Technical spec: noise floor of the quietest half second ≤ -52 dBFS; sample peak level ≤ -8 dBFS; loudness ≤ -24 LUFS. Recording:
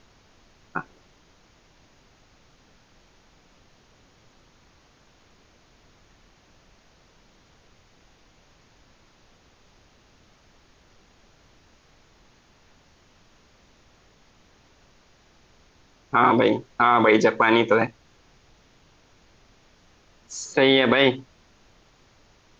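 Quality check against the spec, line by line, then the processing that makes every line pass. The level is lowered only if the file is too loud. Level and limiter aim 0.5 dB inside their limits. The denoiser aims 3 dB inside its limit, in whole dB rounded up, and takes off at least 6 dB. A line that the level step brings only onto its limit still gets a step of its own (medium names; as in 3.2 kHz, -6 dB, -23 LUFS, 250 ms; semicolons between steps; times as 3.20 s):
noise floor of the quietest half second -58 dBFS: pass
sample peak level -6.0 dBFS: fail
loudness -20.0 LUFS: fail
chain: trim -4.5 dB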